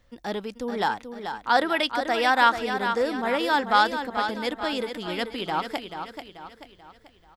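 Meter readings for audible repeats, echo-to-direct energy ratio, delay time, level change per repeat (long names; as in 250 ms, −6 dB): 4, −7.0 dB, 436 ms, −7.0 dB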